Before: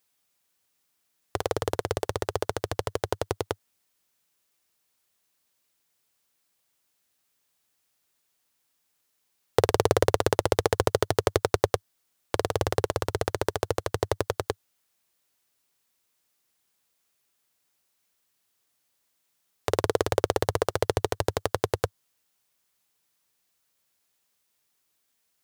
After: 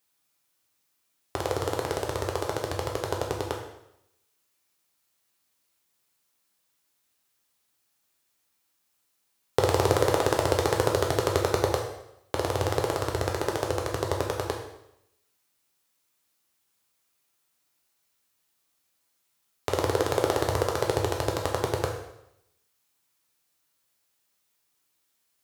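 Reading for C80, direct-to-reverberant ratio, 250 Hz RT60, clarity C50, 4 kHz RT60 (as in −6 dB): 7.5 dB, 0.0 dB, 0.80 s, 5.5 dB, 0.75 s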